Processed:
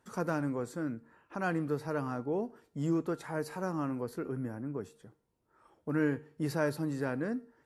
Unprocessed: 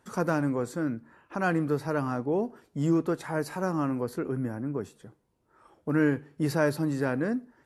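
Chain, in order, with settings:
tuned comb filter 460 Hz, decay 0.57 s, mix 50%

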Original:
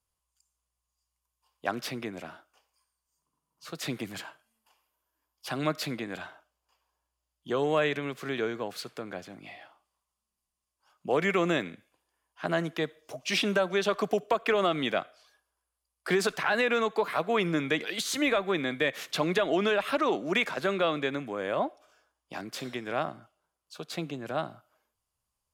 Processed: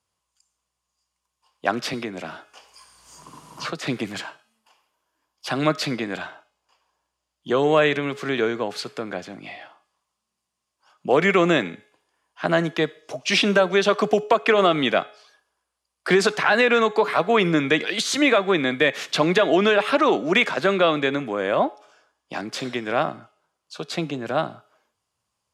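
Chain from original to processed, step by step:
band-pass filter 110–7,900 Hz
hum removal 421.6 Hz, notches 35
0:01.93–0:03.87: multiband upward and downward compressor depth 100%
level +8.5 dB

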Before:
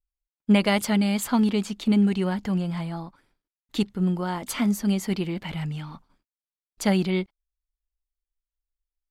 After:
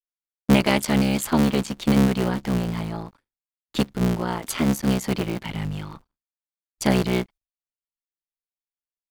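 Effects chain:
sub-harmonics by changed cycles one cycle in 3, muted
downward expander −45 dBFS
level +3.5 dB

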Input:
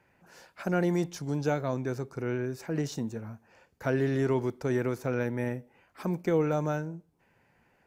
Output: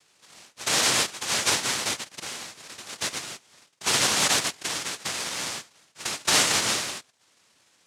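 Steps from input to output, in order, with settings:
0:01.95–0:03.00: high-pass filter 410 Hz → 1,500 Hz 12 dB per octave
cochlear-implant simulation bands 1
0:04.47–0:06.28: downward compressor 10 to 1, threshold −31 dBFS, peak gain reduction 9 dB
level +4 dB

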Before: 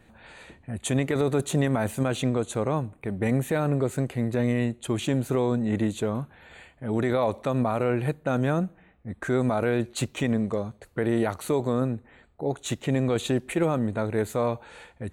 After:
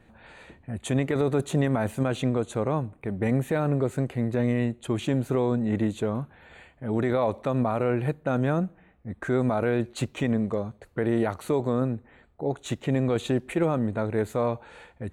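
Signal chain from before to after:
high-shelf EQ 3,700 Hz −7.5 dB

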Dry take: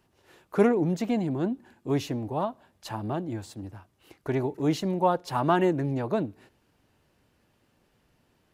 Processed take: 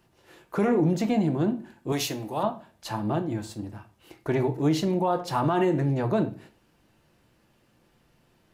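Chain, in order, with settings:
convolution reverb RT60 0.40 s, pre-delay 6 ms, DRR 6.5 dB
brickwall limiter −17 dBFS, peak gain reduction 8.5 dB
0:01.92–0:02.43: spectral tilt +3 dB per octave
level +2.5 dB

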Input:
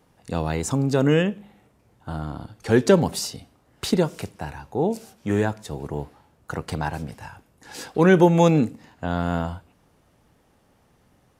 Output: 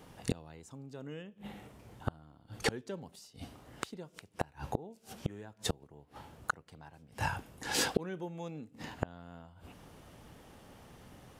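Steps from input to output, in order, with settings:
parametric band 3,100 Hz +3.5 dB 0.4 octaves
gate with flip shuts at −23 dBFS, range −32 dB
level +6 dB

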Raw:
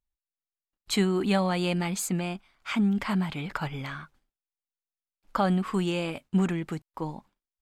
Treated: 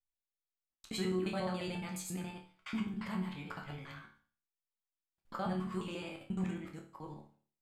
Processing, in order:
reversed piece by piece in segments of 70 ms
resonators tuned to a chord D2 major, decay 0.44 s
level +2 dB

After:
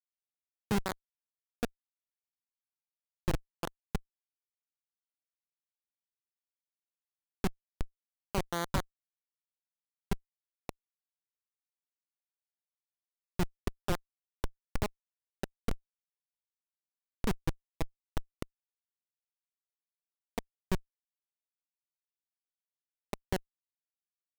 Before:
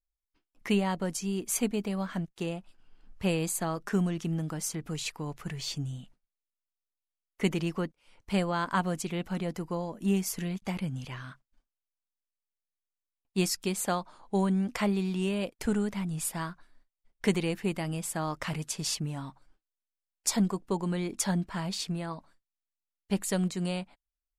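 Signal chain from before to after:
three-way crossover with the lows and the highs turned down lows −16 dB, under 250 Hz, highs −19 dB, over 4,200 Hz
comparator with hysteresis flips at −24 dBFS
level +10.5 dB

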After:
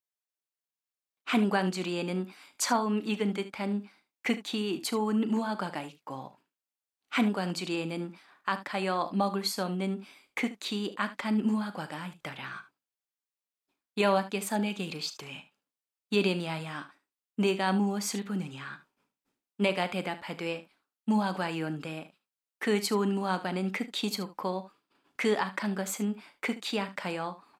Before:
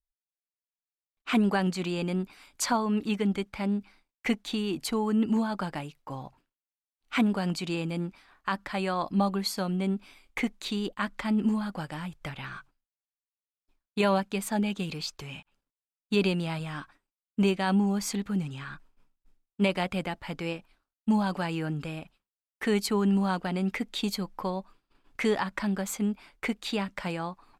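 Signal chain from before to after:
high-pass filter 210 Hz 12 dB per octave
ambience of single reflections 38 ms −15 dB, 74 ms −15 dB

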